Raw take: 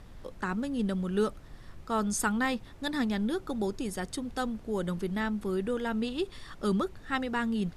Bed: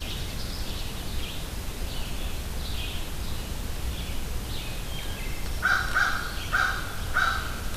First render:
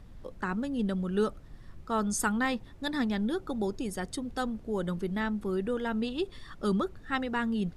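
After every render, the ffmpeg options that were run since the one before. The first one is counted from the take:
-af "afftdn=nr=6:nf=-50"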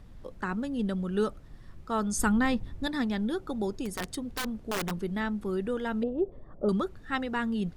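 -filter_complex "[0:a]asettb=1/sr,asplit=3[s0][s1][s2];[s0]atrim=end=2.174[s3];[s1]atrim=start=2.17:end=2.87,asetpts=PTS-STARTPTS,afade=t=in:d=0.004:c=qsin,afade=t=out:st=0.696:d=0.004:c=qsin,lowshelf=f=210:g=11.5[s4];[s2]atrim=start=2.866[s5];[s3][s4]acrossfade=d=0.004:c1=hsin:c2=qsin[s6];[s6][s5]acrossfade=d=0.004:c1=qsin:c2=hsin,asplit=3[s7][s8][s9];[s7]afade=t=out:st=3.85:d=0.02[s10];[s8]aeval=exprs='(mod(17.8*val(0)+1,2)-1)/17.8':c=same,afade=t=in:st=3.85:d=0.02,afade=t=out:st=4.9:d=0.02[s11];[s9]afade=t=in:st=4.9:d=0.02[s12];[s10][s11][s12]amix=inputs=3:normalize=0,asettb=1/sr,asplit=3[s13][s14][s15];[s13]atrim=end=6.034[s16];[s14]atrim=start=6.03:end=6.69,asetpts=PTS-STARTPTS,afade=t=in:d=0.004:c=qsin,afade=t=out:st=0.656:d=0.004:c=qsin,lowpass=f=600:t=q:w=3.1[s17];[s15]atrim=start=6.686[s18];[s16][s17]acrossfade=d=0.004:c1=hsin:c2=qsin[s19];[s19][s18]acrossfade=d=0.004:c1=qsin:c2=hsin"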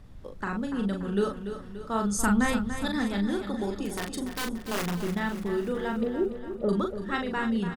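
-filter_complex "[0:a]asplit=2[s0][s1];[s1]adelay=40,volume=0.596[s2];[s0][s2]amix=inputs=2:normalize=0,asplit=2[s3][s4];[s4]aecho=0:1:289|578|867|1156|1445|1734:0.316|0.171|0.0922|0.0498|0.0269|0.0145[s5];[s3][s5]amix=inputs=2:normalize=0"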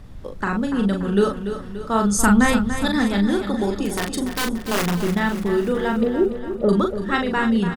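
-af "volume=2.66"

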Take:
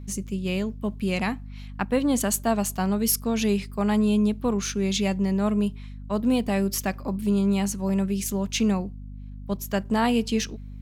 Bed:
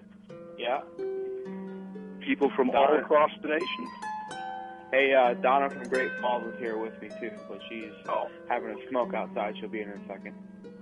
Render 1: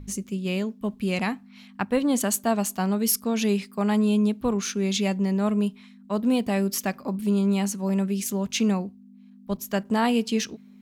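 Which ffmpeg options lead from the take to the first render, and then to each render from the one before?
-af "bandreject=f=50:t=h:w=4,bandreject=f=100:t=h:w=4,bandreject=f=150:t=h:w=4"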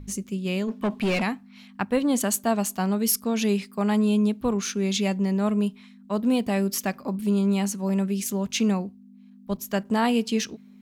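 -filter_complex "[0:a]asplit=3[s0][s1][s2];[s0]afade=t=out:st=0.67:d=0.02[s3];[s1]asplit=2[s4][s5];[s5]highpass=f=720:p=1,volume=14.1,asoftclip=type=tanh:threshold=0.158[s6];[s4][s6]amix=inputs=2:normalize=0,lowpass=f=2100:p=1,volume=0.501,afade=t=in:st=0.67:d=0.02,afade=t=out:st=1.21:d=0.02[s7];[s2]afade=t=in:st=1.21:d=0.02[s8];[s3][s7][s8]amix=inputs=3:normalize=0"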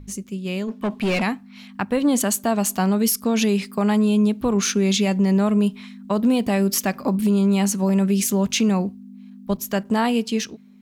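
-af "dynaudnorm=f=240:g=13:m=3.76,alimiter=limit=0.282:level=0:latency=1:release=148"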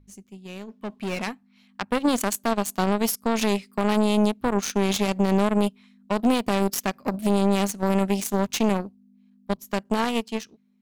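-af "aeval=exprs='0.299*(cos(1*acos(clip(val(0)/0.299,-1,1)))-cos(1*PI/2))+0.0841*(cos(3*acos(clip(val(0)/0.299,-1,1)))-cos(3*PI/2))+0.00211*(cos(4*acos(clip(val(0)/0.299,-1,1)))-cos(4*PI/2))':c=same"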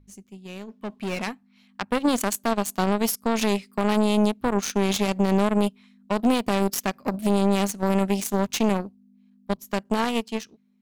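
-af anull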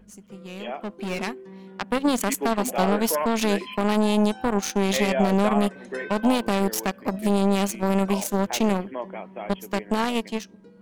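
-filter_complex "[1:a]volume=0.596[s0];[0:a][s0]amix=inputs=2:normalize=0"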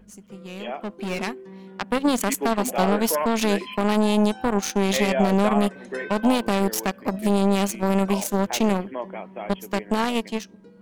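-af "volume=1.12"

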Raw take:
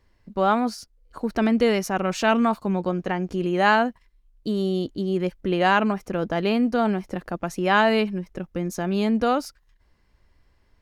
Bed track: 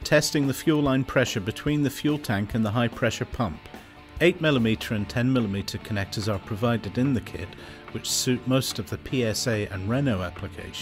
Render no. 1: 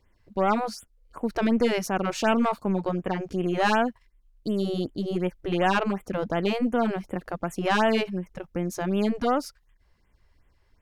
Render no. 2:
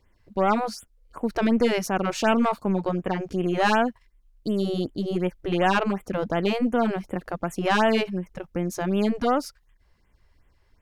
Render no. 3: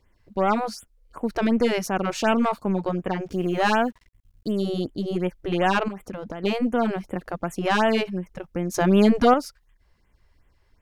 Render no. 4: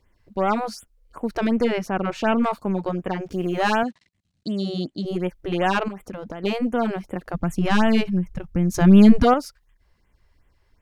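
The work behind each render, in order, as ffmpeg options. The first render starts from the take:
-af "aeval=exprs='(tanh(5.01*val(0)+0.45)-tanh(0.45))/5.01':c=same,afftfilt=real='re*(1-between(b*sr/1024,210*pow(5200/210,0.5+0.5*sin(2*PI*2.7*pts/sr))/1.41,210*pow(5200/210,0.5+0.5*sin(2*PI*2.7*pts/sr))*1.41))':imag='im*(1-between(b*sr/1024,210*pow(5200/210,0.5+0.5*sin(2*PI*2.7*pts/sr))/1.41,210*pow(5200/210,0.5+0.5*sin(2*PI*2.7*pts/sr))*1.41))':win_size=1024:overlap=0.75"
-af "volume=1.19"
-filter_complex "[0:a]asettb=1/sr,asplit=3[s0][s1][s2];[s0]atrim=end=3.264[s3];[s1]atrim=start=3.26:end=4.52,asetpts=PTS-STARTPTS,afade=t=in:d=0.004:c=qsin,afade=t=out:st=1.256:d=0.004:c=qsin,acrusher=bits=8:mix=0:aa=0.5[s4];[s2]atrim=start=4.516[s5];[s3][s4]acrossfade=d=0.004:c1=hsin:c2=qsin[s6];[s6][s5]acrossfade=d=0.004:c1=qsin:c2=hsin,asettb=1/sr,asplit=3[s7][s8][s9];[s7]atrim=end=5.884[s10];[s8]atrim=start=5.88:end=6.44,asetpts=PTS-STARTPTS,afade=t=in:d=0.004:c=qsin,afade=t=out:st=0.556:d=0.004:c=qsin,acompressor=threshold=0.0398:ratio=10:attack=3.2:release=140:knee=1:detection=peak[s11];[s9]atrim=start=6.436[s12];[s10][s11]acrossfade=d=0.004:c1=hsin:c2=qsin[s13];[s13][s12]acrossfade=d=0.004:c1=qsin:c2=hsin,asettb=1/sr,asplit=3[s14][s15][s16];[s14]atrim=end=8.744[s17];[s15]atrim=start=8.74:end=9.34,asetpts=PTS-STARTPTS,afade=t=in:d=0.004:c=qsin,afade=t=out:st=0.596:d=0.004:c=qsin,acontrast=80[s18];[s16]atrim=start=9.336[s19];[s17][s18]acrossfade=d=0.004:c1=hsin:c2=qsin[s20];[s20][s19]acrossfade=d=0.004:c1=qsin:c2=hsin"
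-filter_complex "[0:a]asettb=1/sr,asplit=3[s0][s1][s2];[s0]atrim=end=1.644[s3];[s1]atrim=start=1.64:end=2.44,asetpts=PTS-STARTPTS,afade=t=in:d=0.004:c=qsin,afade=t=out:st=0.796:d=0.004:c=qsin,bass=f=250:g=2,treble=f=4000:g=-11[s4];[s2]atrim=start=2.436[s5];[s3][s4]acrossfade=d=0.004:c1=hsin:c2=qsin[s6];[s6][s5]acrossfade=d=0.004:c1=qsin:c2=hsin,asettb=1/sr,asplit=3[s7][s8][s9];[s7]atrim=end=3.834[s10];[s8]atrim=start=3.83:end=5.05,asetpts=PTS-STARTPTS,afade=t=in:d=0.004:c=qsin,afade=t=out:st=1.216:d=0.004:c=qsin,highpass=160,equalizer=f=170:t=q:w=4:g=5,equalizer=f=450:t=q:w=4:g=-9,equalizer=f=970:t=q:w=4:g=-6,equalizer=f=1400:t=q:w=4:g=-4,equalizer=f=4100:t=q:w=4:g=7,lowpass=f=8700:w=0.5412,lowpass=f=8700:w=1.3066[s11];[s9]atrim=start=5.046[s12];[s10][s11]acrossfade=d=0.004:c1=hsin:c2=qsin[s13];[s13][s12]acrossfade=d=0.004:c1=qsin:c2=hsin,asplit=3[s14][s15][s16];[s14]afade=t=out:st=7.33:d=0.02[s17];[s15]asubboost=boost=4.5:cutoff=210,afade=t=in:st=7.33:d=0.02,afade=t=out:st=9.22:d=0.02[s18];[s16]afade=t=in:st=9.22:d=0.02[s19];[s17][s18][s19]amix=inputs=3:normalize=0"

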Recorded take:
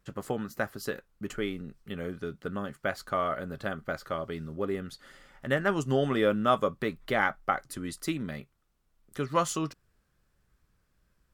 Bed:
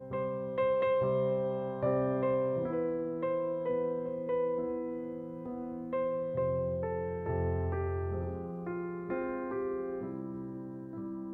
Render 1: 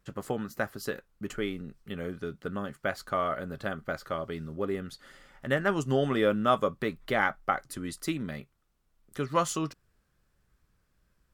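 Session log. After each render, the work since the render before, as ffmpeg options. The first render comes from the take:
-af anull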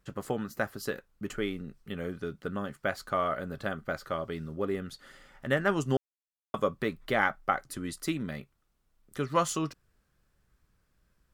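-filter_complex "[0:a]asplit=3[s0][s1][s2];[s0]atrim=end=5.97,asetpts=PTS-STARTPTS,afade=t=out:st=5.966:d=0.004:c=hsin[s3];[s1]atrim=start=5.97:end=6.54,asetpts=PTS-STARTPTS,volume=0[s4];[s2]atrim=start=6.54,asetpts=PTS-STARTPTS,afade=t=in:d=0.004:c=hsin[s5];[s3][s4][s5]concat=n=3:v=0:a=1"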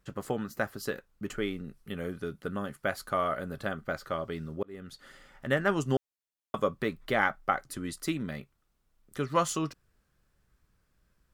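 -filter_complex "[0:a]asettb=1/sr,asplit=3[s0][s1][s2];[s0]atrim=end=1.644[s3];[s1]atrim=start=1.64:end=3.65,asetpts=PTS-STARTPTS,afade=t=in:d=0.004:c=qsin,afade=t=out:st=2.006:d=0.004:c=qsin,equalizer=f=11000:w=2.3:g=9.5[s4];[s2]atrim=start=3.646[s5];[s3][s4]acrossfade=d=0.004:c1=hsin:c2=qsin[s6];[s6][s5]acrossfade=d=0.004:c1=qsin:c2=hsin,asplit=2[s7][s8];[s7]atrim=end=4.63,asetpts=PTS-STARTPTS,afade=t=out:st=4.626:d=0.004:c=hsin[s9];[s8]atrim=start=4.63,asetpts=PTS-STARTPTS,afade=t=in:d=0.41[s10];[s9][s10]concat=n=2:v=0:a=1"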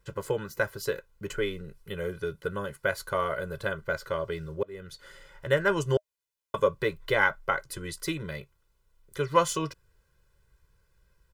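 -af "bandreject=f=620:w=19,aecho=1:1:2:1"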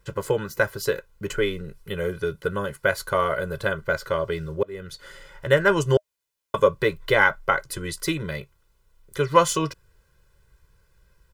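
-af "volume=2,alimiter=limit=0.708:level=0:latency=1"

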